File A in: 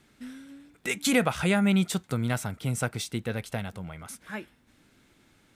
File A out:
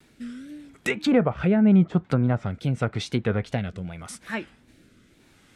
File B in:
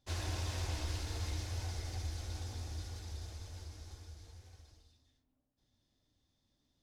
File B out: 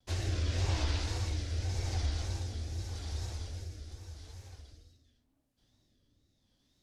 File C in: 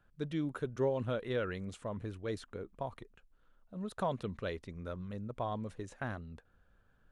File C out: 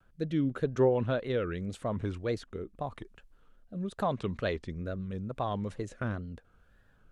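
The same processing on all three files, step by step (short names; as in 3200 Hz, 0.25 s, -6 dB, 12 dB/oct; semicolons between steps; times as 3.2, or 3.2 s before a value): rotary speaker horn 0.85 Hz; treble ducked by the level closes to 1100 Hz, closed at -25 dBFS; wow and flutter 120 cents; gain +7.5 dB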